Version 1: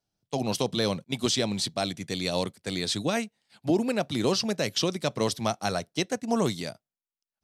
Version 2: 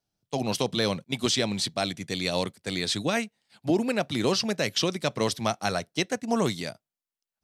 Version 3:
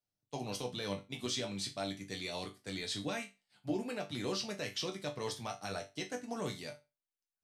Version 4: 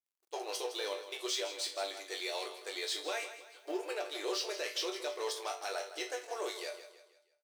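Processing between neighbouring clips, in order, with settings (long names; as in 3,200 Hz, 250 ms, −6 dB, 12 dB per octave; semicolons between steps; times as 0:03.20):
dynamic equaliser 2,000 Hz, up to +4 dB, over −41 dBFS, Q 1
brickwall limiter −14.5 dBFS, peak gain reduction 4 dB; resonators tuned to a chord G2 major, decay 0.25 s; level +1 dB
mu-law and A-law mismatch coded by mu; linear-phase brick-wall high-pass 320 Hz; on a send: repeating echo 161 ms, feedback 42%, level −12 dB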